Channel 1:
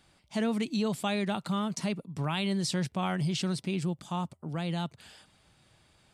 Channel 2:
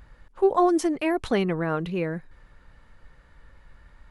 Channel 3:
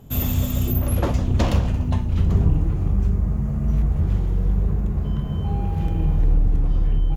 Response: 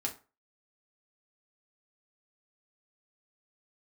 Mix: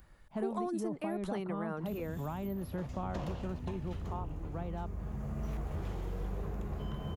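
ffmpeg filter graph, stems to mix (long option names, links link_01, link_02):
-filter_complex "[0:a]lowpass=1100,volume=-3dB[link_01];[1:a]aemphasis=mode=production:type=50fm,volume=-9.5dB[link_02];[2:a]adelay=1750,volume=-4.5dB,afade=type=in:start_time=2.85:duration=0.29:silence=0.354813,afade=type=in:start_time=4.82:duration=0.68:silence=0.375837[link_03];[link_01][link_02][link_03]amix=inputs=3:normalize=0,acrossover=split=350|1400[link_04][link_05][link_06];[link_04]acompressor=threshold=-38dB:ratio=4[link_07];[link_05]acompressor=threshold=-37dB:ratio=4[link_08];[link_06]acompressor=threshold=-54dB:ratio=4[link_09];[link_07][link_08][link_09]amix=inputs=3:normalize=0"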